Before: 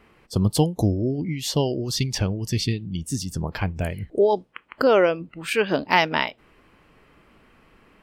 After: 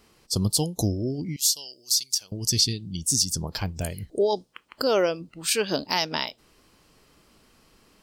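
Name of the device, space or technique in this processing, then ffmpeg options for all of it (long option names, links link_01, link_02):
over-bright horn tweeter: -filter_complex "[0:a]highshelf=frequency=3400:width_type=q:width=1.5:gain=13.5,alimiter=limit=-5dB:level=0:latency=1:release=159,asettb=1/sr,asplit=3[link_01][link_02][link_03];[link_01]atrim=end=1.364[link_04];[link_02]atrim=start=1.36:end=2.32,asetpts=PTS-STARTPTS,afade=type=in:duration=0.004:curve=qsin,afade=type=out:start_time=0.956:duration=0.004:curve=qsin,aderivative[link_05];[link_03]atrim=start=2.316[link_06];[link_04][link_05]acrossfade=duration=0.004:curve1=hsin:curve2=qsin[link_07];[link_07][link_06]acrossfade=duration=0.004:curve1=qsin:curve2=hsin,volume=-4dB"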